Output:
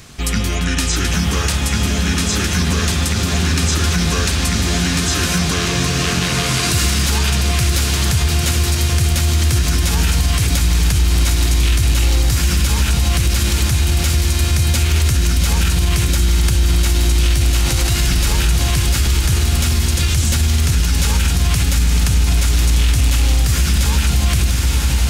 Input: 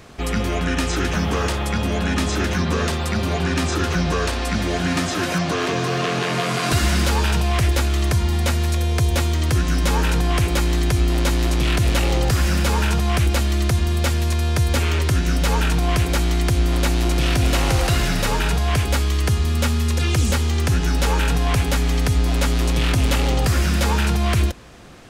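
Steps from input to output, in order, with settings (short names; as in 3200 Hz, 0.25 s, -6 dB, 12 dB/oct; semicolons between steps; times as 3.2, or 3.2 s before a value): EQ curve 140 Hz 0 dB, 550 Hz -10 dB, 6800 Hz +6 dB; diffused feedback echo 0.93 s, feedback 73%, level -6 dB; limiter -12 dBFS, peak gain reduction 9 dB; gain +5 dB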